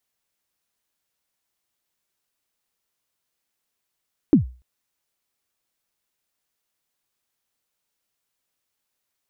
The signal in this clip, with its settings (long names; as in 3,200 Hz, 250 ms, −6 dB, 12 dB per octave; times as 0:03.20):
synth kick length 0.29 s, from 340 Hz, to 62 Hz, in 120 ms, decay 0.34 s, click off, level −6.5 dB